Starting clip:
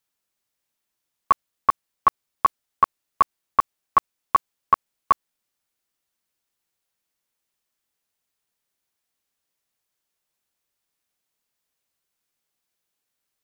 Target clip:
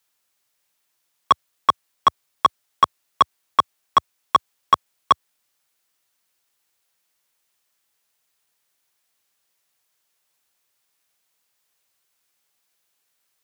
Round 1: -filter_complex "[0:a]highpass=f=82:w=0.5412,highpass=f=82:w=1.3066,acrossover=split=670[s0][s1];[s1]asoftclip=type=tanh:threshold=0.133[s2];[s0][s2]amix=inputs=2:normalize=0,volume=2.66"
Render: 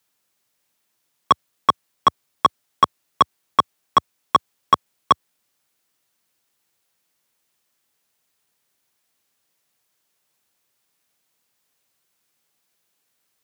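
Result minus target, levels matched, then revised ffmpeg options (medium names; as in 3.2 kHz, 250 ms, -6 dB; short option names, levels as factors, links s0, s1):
250 Hz band +5.5 dB
-filter_complex "[0:a]highpass=f=82:w=0.5412,highpass=f=82:w=1.3066,equalizer=f=200:t=o:w=2.4:g=-7.5,acrossover=split=670[s0][s1];[s1]asoftclip=type=tanh:threshold=0.133[s2];[s0][s2]amix=inputs=2:normalize=0,volume=2.66"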